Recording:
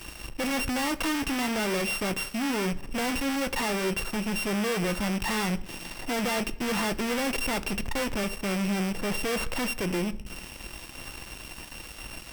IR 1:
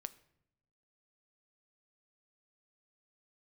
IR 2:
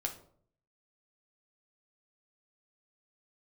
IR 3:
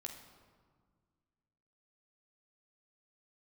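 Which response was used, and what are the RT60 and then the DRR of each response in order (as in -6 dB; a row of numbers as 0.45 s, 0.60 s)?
1; 0.80 s, 0.60 s, 1.7 s; 12.5 dB, 1.5 dB, 2.0 dB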